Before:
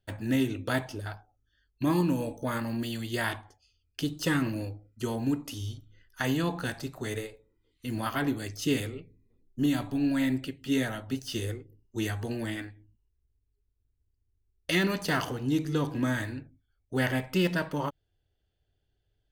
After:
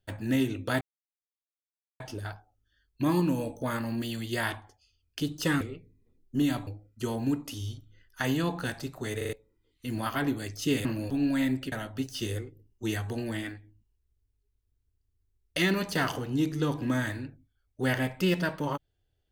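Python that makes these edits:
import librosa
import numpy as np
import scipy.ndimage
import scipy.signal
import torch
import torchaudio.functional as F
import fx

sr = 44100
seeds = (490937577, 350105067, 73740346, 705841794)

y = fx.edit(x, sr, fx.insert_silence(at_s=0.81, length_s=1.19),
    fx.swap(start_s=4.42, length_s=0.25, other_s=8.85, other_length_s=1.06),
    fx.stutter_over(start_s=7.17, slice_s=0.04, count=4),
    fx.cut(start_s=10.53, length_s=0.32), tone=tone)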